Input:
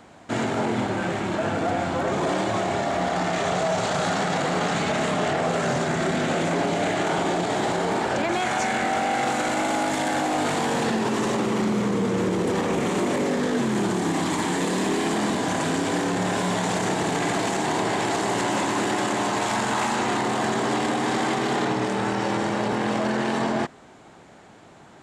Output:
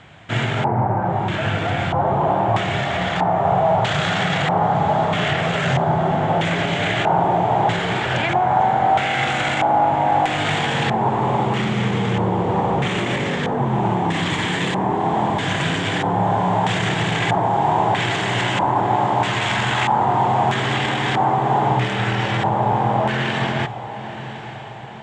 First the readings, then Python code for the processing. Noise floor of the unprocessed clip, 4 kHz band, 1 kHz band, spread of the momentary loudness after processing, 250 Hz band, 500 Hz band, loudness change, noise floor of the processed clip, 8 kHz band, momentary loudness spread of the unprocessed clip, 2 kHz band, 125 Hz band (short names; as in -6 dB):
-48 dBFS, +5.5 dB, +7.5 dB, 4 LU, +0.5 dB, +2.5 dB, +5.0 dB, -31 dBFS, -5.5 dB, 1 LU, +5.0 dB, +9.5 dB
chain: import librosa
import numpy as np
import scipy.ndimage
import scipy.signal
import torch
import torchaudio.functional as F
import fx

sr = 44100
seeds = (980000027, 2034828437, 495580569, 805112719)

y = fx.filter_lfo_lowpass(x, sr, shape='square', hz=0.78, low_hz=870.0, high_hz=3400.0, q=4.0)
y = fx.graphic_eq(y, sr, hz=(125, 250, 500, 1000, 2000, 4000, 8000), db=(10, -10, -4, -4, 3, -11, 8))
y = fx.echo_diffused(y, sr, ms=985, feedback_pct=51, wet_db=-13)
y = y * librosa.db_to_amplitude(5.0)